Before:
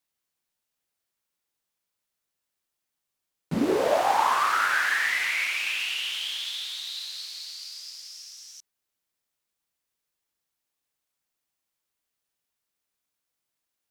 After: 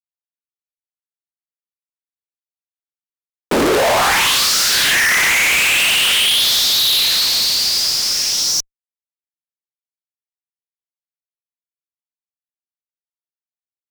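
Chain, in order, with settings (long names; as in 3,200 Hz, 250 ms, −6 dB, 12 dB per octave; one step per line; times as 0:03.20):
auto-filter high-pass sine 0.49 Hz 420–5,100 Hz
fuzz pedal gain 44 dB, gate −50 dBFS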